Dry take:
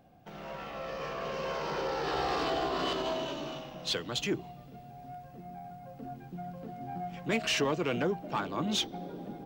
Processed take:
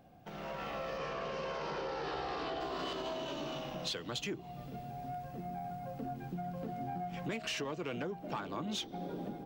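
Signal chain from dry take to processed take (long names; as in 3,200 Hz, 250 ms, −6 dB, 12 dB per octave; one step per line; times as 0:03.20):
downward compressor 6 to 1, threshold −41 dBFS, peak gain reduction 15.5 dB
0:00.97–0:02.59: low-pass filter 7,900 Hz → 4,700 Hz 12 dB per octave
automatic gain control gain up to 4.5 dB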